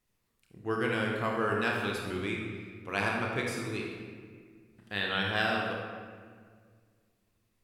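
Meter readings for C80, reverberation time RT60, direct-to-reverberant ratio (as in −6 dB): 3.0 dB, 1.8 s, −1.5 dB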